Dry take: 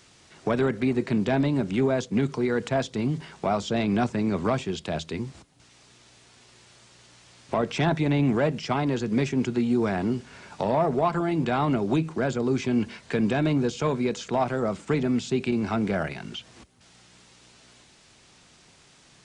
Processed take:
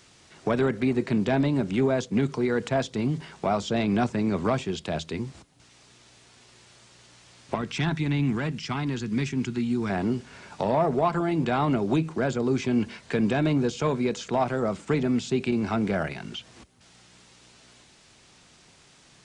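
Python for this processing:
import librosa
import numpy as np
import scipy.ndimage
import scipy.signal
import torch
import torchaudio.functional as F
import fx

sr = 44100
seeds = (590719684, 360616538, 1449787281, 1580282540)

y = fx.peak_eq(x, sr, hz=570.0, db=-14.0, octaves=1.1, at=(7.55, 9.9))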